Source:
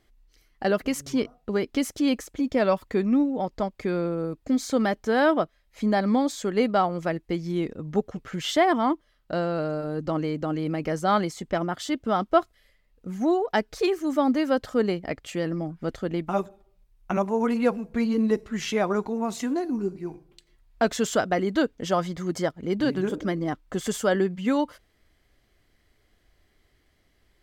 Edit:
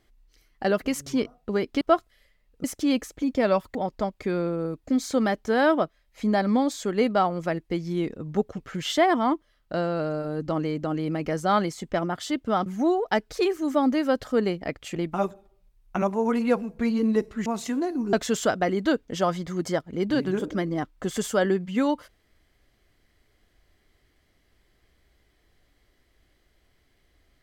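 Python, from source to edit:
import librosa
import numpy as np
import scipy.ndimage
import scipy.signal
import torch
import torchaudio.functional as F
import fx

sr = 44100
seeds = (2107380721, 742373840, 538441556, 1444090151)

y = fx.edit(x, sr, fx.cut(start_s=2.92, length_s=0.42),
    fx.move(start_s=12.25, length_s=0.83, to_s=1.81),
    fx.cut(start_s=15.37, length_s=0.73),
    fx.cut(start_s=18.61, length_s=0.59),
    fx.cut(start_s=19.87, length_s=0.96), tone=tone)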